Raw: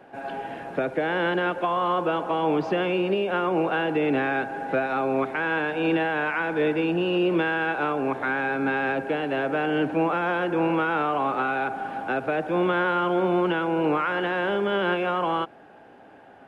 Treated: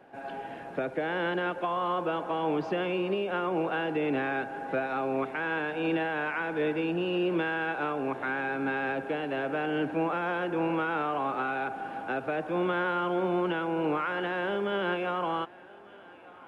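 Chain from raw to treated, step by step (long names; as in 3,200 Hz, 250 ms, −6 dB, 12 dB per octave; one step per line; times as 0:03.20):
feedback echo with a high-pass in the loop 1,198 ms, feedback 70%, high-pass 400 Hz, level −22 dB
level −5.5 dB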